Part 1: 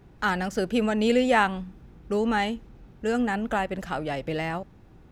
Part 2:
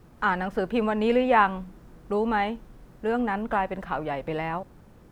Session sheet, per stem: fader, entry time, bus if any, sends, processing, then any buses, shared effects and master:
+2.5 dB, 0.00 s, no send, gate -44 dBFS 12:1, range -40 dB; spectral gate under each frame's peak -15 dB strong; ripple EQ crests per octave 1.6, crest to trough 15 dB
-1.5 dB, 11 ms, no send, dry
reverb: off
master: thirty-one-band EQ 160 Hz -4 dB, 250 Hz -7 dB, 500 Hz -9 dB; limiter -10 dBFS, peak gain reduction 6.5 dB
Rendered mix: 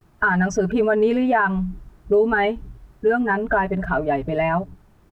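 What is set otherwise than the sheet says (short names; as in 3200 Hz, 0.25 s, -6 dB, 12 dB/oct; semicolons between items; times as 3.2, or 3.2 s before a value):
stem 1 +2.5 dB -> +9.5 dB; stem 2: polarity flipped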